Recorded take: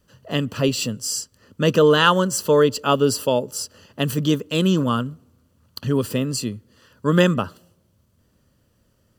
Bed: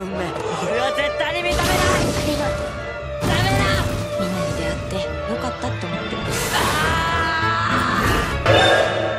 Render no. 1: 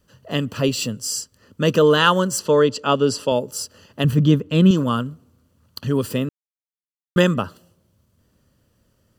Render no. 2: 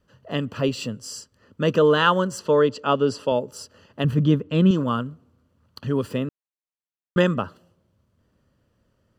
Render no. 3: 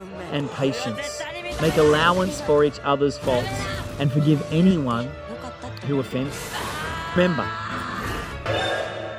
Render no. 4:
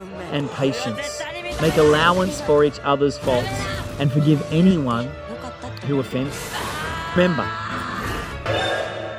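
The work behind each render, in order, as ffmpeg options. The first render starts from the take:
-filter_complex "[0:a]asettb=1/sr,asplit=3[s0][s1][s2];[s0]atrim=end=2.394[s3];[s1]atrim=start=2.39:end=3.32,asetpts=PTS-STARTPTS,afade=t=in:d=0.004:c=qsin,afade=t=out:st=0.926:d=0.004:c=qsin,highpass=100,lowpass=7100[s4];[s2]atrim=start=3.316[s5];[s3][s4]acrossfade=d=0.004:c1=hsin:c2=qsin[s6];[s6][s5]acrossfade=d=0.004:c1=qsin:c2=hsin,asettb=1/sr,asplit=3[s7][s8][s9];[s7]atrim=end=4.044[s10];[s8]atrim=start=4.04:end=4.71,asetpts=PTS-STARTPTS,afade=t=in:d=0.004:c=qsin,afade=t=out:st=0.666:d=0.004:c=qsin,bass=f=250:g=9,treble=f=4000:g=-10[s11];[s9]atrim=start=4.706[s12];[s10][s11]acrossfade=d=0.004:c1=hsin:c2=qsin[s13];[s13][s12]acrossfade=d=0.004:c1=qsin:c2=hsin,asplit=3[s14][s15][s16];[s14]atrim=end=6.29,asetpts=PTS-STARTPTS,afade=t=out:st=6.286:d=0.004:c=hsin[s17];[s15]atrim=start=6.29:end=7.16,asetpts=PTS-STARTPTS,volume=0[s18];[s16]atrim=start=7.16,asetpts=PTS-STARTPTS,afade=t=in:d=0.004:c=hsin[s19];[s17][s18][s19]concat=n=3:v=0:a=1"
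-af "lowpass=f=1900:p=1,lowshelf=f=470:g=-4"
-filter_complex "[1:a]volume=0.316[s0];[0:a][s0]amix=inputs=2:normalize=0"
-af "volume=1.26"

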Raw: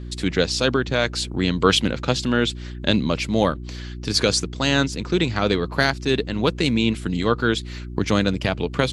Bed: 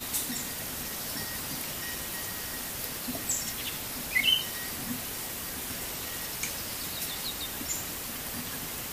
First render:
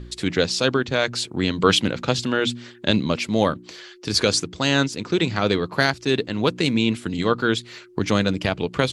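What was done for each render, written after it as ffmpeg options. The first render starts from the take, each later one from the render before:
-af "bandreject=f=60:t=h:w=4,bandreject=f=120:t=h:w=4,bandreject=f=180:t=h:w=4,bandreject=f=240:t=h:w=4,bandreject=f=300:t=h:w=4"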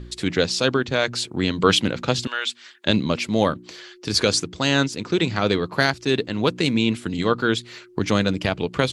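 -filter_complex "[0:a]asettb=1/sr,asplit=3[s0][s1][s2];[s0]atrim=end=2.274[s3];[s1]atrim=start=2.27:end=2.86,asetpts=PTS-STARTPTS,afade=t=in:d=0.004:c=qsin,afade=t=out:st=0.586:d=0.004:c=qsin,highpass=1100[s4];[s2]atrim=start=2.856[s5];[s3][s4]acrossfade=d=0.004:c1=hsin:c2=qsin[s6];[s6][s5]acrossfade=d=0.004:c1=qsin:c2=hsin"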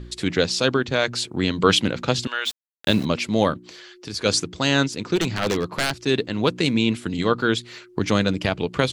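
-filter_complex "[0:a]asplit=3[s0][s1][s2];[s0]afade=t=out:st=2.45:d=0.02[s3];[s1]aeval=exprs='val(0)*gte(abs(val(0)),0.0282)':c=same,afade=t=in:st=2.45:d=0.02,afade=t=out:st=3.04:d=0.02[s4];[s2]afade=t=in:st=3.04:d=0.02[s5];[s3][s4][s5]amix=inputs=3:normalize=0,asplit=3[s6][s7][s8];[s6]afade=t=out:st=3.58:d=0.02[s9];[s7]acompressor=threshold=0.00794:ratio=1.5:attack=3.2:release=140:knee=1:detection=peak,afade=t=in:st=3.58:d=0.02,afade=t=out:st=4.24:d=0.02[s10];[s8]afade=t=in:st=4.24:d=0.02[s11];[s9][s10][s11]amix=inputs=3:normalize=0,asplit=3[s12][s13][s14];[s12]afade=t=out:st=5.15:d=0.02[s15];[s13]aeval=exprs='0.188*(abs(mod(val(0)/0.188+3,4)-2)-1)':c=same,afade=t=in:st=5.15:d=0.02,afade=t=out:st=5.94:d=0.02[s16];[s14]afade=t=in:st=5.94:d=0.02[s17];[s15][s16][s17]amix=inputs=3:normalize=0"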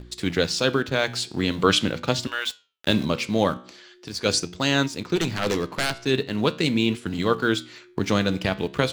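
-filter_complex "[0:a]asplit=2[s0][s1];[s1]aeval=exprs='val(0)*gte(abs(val(0)),0.0335)':c=same,volume=0.398[s2];[s0][s2]amix=inputs=2:normalize=0,flanger=delay=10:depth=6.4:regen=81:speed=0.42:shape=triangular"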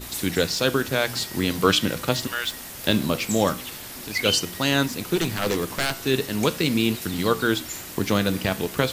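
-filter_complex "[1:a]volume=0.841[s0];[0:a][s0]amix=inputs=2:normalize=0"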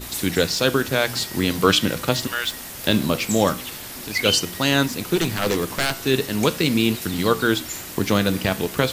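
-af "volume=1.33,alimiter=limit=0.708:level=0:latency=1"

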